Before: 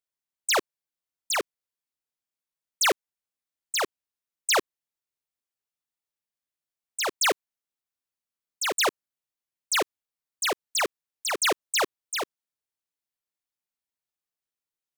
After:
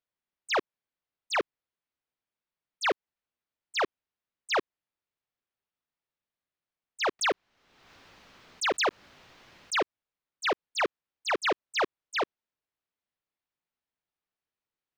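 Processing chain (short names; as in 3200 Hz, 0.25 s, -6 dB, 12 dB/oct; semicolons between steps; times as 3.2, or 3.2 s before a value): compressor, threshold -28 dBFS, peak gain reduction 7 dB; air absorption 230 m; 7.19–9.77 backwards sustainer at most 41 dB/s; gain +4.5 dB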